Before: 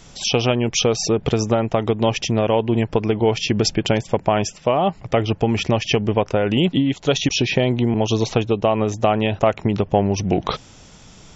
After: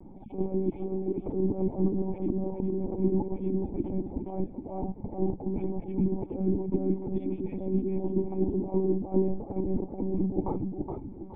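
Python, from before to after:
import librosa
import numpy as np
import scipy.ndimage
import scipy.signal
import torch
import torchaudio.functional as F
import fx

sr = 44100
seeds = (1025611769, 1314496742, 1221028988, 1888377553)

y = fx.high_shelf(x, sr, hz=2300.0, db=-7.0)
y = fx.over_compress(y, sr, threshold_db=-23.0, ratio=-0.5)
y = fx.formant_cascade(y, sr, vowel='u')
y = fx.air_absorb(y, sr, metres=59.0)
y = fx.echo_feedback(y, sr, ms=417, feedback_pct=32, wet_db=-5)
y = fx.lpc_monotone(y, sr, seeds[0], pitch_hz=190.0, order=16)
y = F.gain(torch.from_numpy(y), 5.0).numpy()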